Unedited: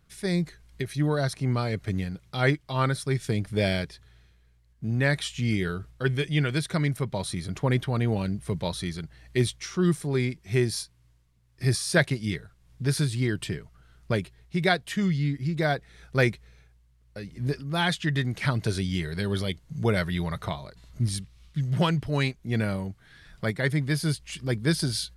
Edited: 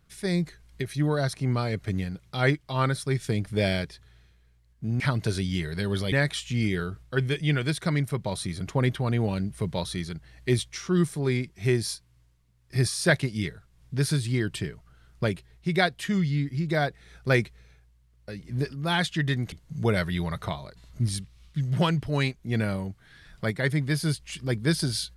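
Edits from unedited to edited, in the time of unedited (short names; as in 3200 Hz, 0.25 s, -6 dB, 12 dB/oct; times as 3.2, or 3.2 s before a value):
18.4–19.52 move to 5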